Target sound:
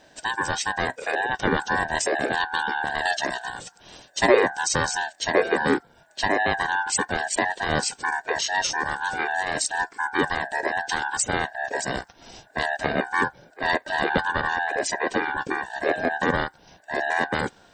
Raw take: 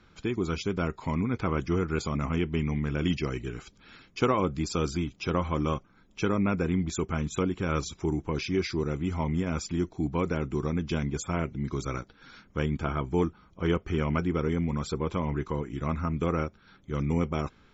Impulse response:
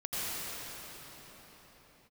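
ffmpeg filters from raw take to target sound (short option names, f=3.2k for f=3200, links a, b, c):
-af "afftfilt=real='real(if(lt(b,960),b+48*(1-2*mod(floor(b/48),2)),b),0)':imag='imag(if(lt(b,960),b+48*(1-2*mod(floor(b/48),2)),b),0)':win_size=2048:overlap=0.75,bass=f=250:g=14,treble=f=4k:g=14,aeval=exprs='val(0)*sin(2*PI*410*n/s+410*0.2/0.94*sin(2*PI*0.94*n/s))':c=same,volume=4.5dB"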